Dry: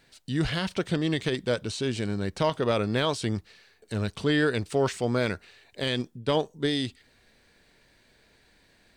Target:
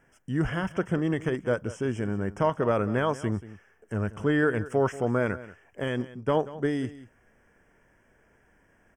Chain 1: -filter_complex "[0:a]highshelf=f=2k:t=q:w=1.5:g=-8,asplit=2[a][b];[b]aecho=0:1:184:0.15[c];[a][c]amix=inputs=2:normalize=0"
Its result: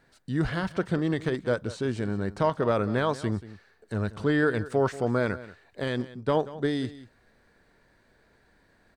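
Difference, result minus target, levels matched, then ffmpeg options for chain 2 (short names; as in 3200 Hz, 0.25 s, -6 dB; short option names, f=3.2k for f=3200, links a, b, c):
4000 Hz band +3.5 dB
-filter_complex "[0:a]asuperstop=centerf=4100:order=12:qfactor=2.3,highshelf=f=2k:t=q:w=1.5:g=-8,asplit=2[a][b];[b]aecho=0:1:184:0.15[c];[a][c]amix=inputs=2:normalize=0"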